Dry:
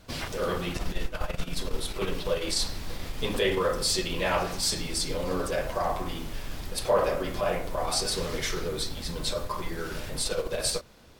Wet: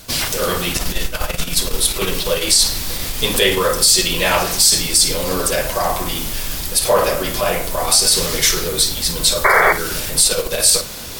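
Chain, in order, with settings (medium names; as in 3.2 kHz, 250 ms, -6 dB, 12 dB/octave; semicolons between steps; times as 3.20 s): pre-emphasis filter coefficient 0.8; reverse; upward compressor, threshold -41 dBFS; reverse; painted sound noise, 9.44–9.73 s, 370–2300 Hz -32 dBFS; on a send: flutter echo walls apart 9.1 m, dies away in 0.22 s; on the sum: loudness maximiser +23 dB; trim -1 dB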